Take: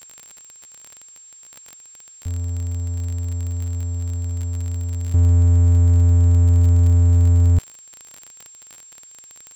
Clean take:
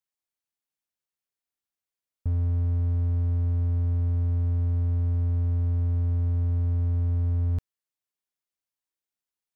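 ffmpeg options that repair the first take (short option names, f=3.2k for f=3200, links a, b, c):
-af "adeclick=t=4,bandreject=f=7.5k:w=30,agate=range=-21dB:threshold=-37dB,asetnsamples=n=441:p=0,asendcmd='5.14 volume volume -11dB',volume=0dB"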